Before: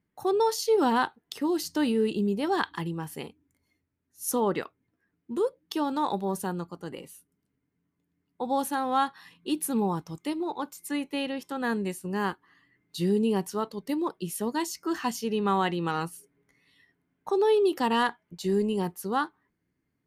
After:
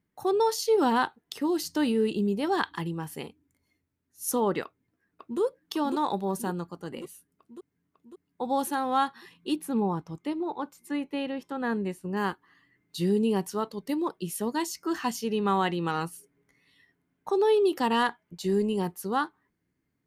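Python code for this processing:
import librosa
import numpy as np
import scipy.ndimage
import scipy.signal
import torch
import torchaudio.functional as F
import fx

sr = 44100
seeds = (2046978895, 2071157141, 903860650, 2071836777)

y = fx.echo_throw(x, sr, start_s=4.64, length_s=0.76, ms=550, feedback_pct=65, wet_db=-3.0)
y = fx.high_shelf(y, sr, hz=3600.0, db=-12.0, at=(9.56, 12.17))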